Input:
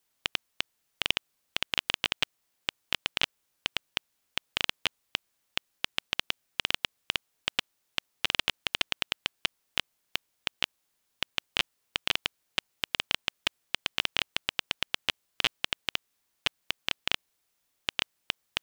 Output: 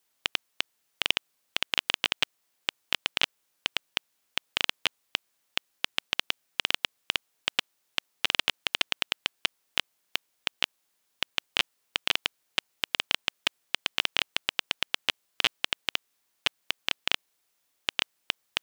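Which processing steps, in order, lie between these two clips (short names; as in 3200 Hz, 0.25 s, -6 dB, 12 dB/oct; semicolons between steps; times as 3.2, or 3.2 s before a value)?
low shelf 140 Hz -10 dB; gain +2 dB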